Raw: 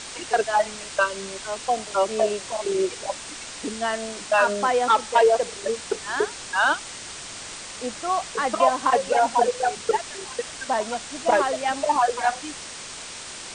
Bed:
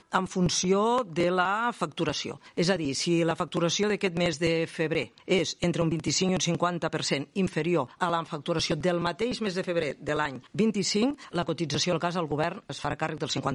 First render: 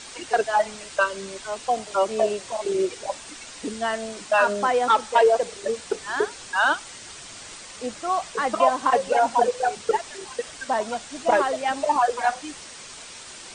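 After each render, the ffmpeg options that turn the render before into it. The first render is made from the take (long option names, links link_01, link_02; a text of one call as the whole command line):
ffmpeg -i in.wav -af "afftdn=noise_reduction=6:noise_floor=-38" out.wav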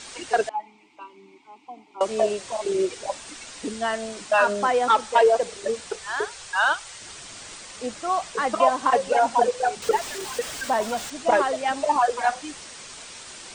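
ffmpeg -i in.wav -filter_complex "[0:a]asettb=1/sr,asplit=3[link_01][link_02][link_03];[link_01]atrim=end=0.494[link_04];[link_02]atrim=start=0.49:end=2.01,asetpts=PTS-STARTPTS,afade=type=in:duration=0.004:curve=qsin,afade=type=out:start_time=1.516:duration=0.004:curve=qsin,asplit=3[link_05][link_06][link_07];[link_05]bandpass=frequency=300:width_type=q:width=8,volume=0dB[link_08];[link_06]bandpass=frequency=870:width_type=q:width=8,volume=-6dB[link_09];[link_07]bandpass=frequency=2240:width_type=q:width=8,volume=-9dB[link_10];[link_08][link_09][link_10]amix=inputs=3:normalize=0[link_11];[link_03]atrim=start=2.006[link_12];[link_04][link_11]acrossfade=duration=0.004:curve1=hsin:curve2=qsin[link_13];[link_13][link_12]acrossfade=duration=0.004:curve1=qsin:curve2=hsin,asettb=1/sr,asplit=3[link_14][link_15][link_16];[link_14]atrim=end=5.894[link_17];[link_15]atrim=start=5.89:end=7.01,asetpts=PTS-STARTPTS,afade=type=in:duration=0.004:curve=qsin,afade=type=out:start_time=1.116:duration=0.004:curve=qsin,equalizer=frequency=260:width_type=o:width=0.95:gain=-15[link_18];[link_16]atrim=start=7.006[link_19];[link_17][link_18]acrossfade=duration=0.004:curve1=hsin:curve2=qsin[link_20];[link_20][link_19]acrossfade=duration=0.004:curve1=qsin:curve2=hsin,asettb=1/sr,asplit=3[link_21][link_22][link_23];[link_21]atrim=end=9.824[link_24];[link_22]atrim=start=9.82:end=11.1,asetpts=PTS-STARTPTS,afade=type=in:duration=0.004:curve=qsin,afade=type=out:start_time=1.276:duration=0.004:curve=qsin,aeval=exprs='val(0)+0.5*0.0224*sgn(val(0))':channel_layout=same[link_25];[link_23]atrim=start=11.096[link_26];[link_24][link_25]acrossfade=duration=0.004:curve1=hsin:curve2=qsin[link_27];[link_27][link_26]acrossfade=duration=0.004:curve1=qsin:curve2=hsin" out.wav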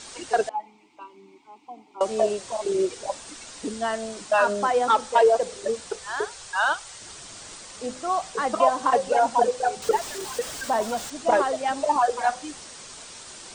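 ffmpeg -i in.wav -af "equalizer=frequency=2300:width=1.1:gain=-4.5,bandreject=frequency=254.6:width_type=h:width=4,bandreject=frequency=509.2:width_type=h:width=4,bandreject=frequency=763.8:width_type=h:width=4" out.wav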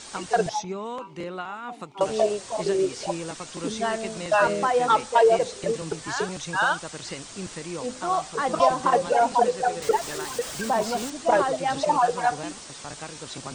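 ffmpeg -i in.wav -i bed.wav -filter_complex "[1:a]volume=-9dB[link_01];[0:a][link_01]amix=inputs=2:normalize=0" out.wav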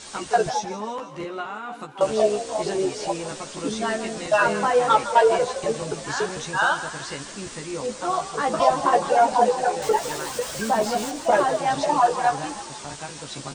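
ffmpeg -i in.wav -filter_complex "[0:a]asplit=2[link_01][link_02];[link_02]adelay=14,volume=-3.5dB[link_03];[link_01][link_03]amix=inputs=2:normalize=0,asplit=7[link_04][link_05][link_06][link_07][link_08][link_09][link_10];[link_05]adelay=160,afreqshift=46,volume=-13.5dB[link_11];[link_06]adelay=320,afreqshift=92,volume=-18.4dB[link_12];[link_07]adelay=480,afreqshift=138,volume=-23.3dB[link_13];[link_08]adelay=640,afreqshift=184,volume=-28.1dB[link_14];[link_09]adelay=800,afreqshift=230,volume=-33dB[link_15];[link_10]adelay=960,afreqshift=276,volume=-37.9dB[link_16];[link_04][link_11][link_12][link_13][link_14][link_15][link_16]amix=inputs=7:normalize=0" out.wav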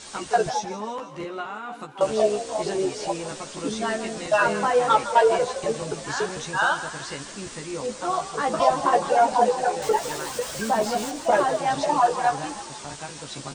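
ffmpeg -i in.wav -af "volume=-1dB" out.wav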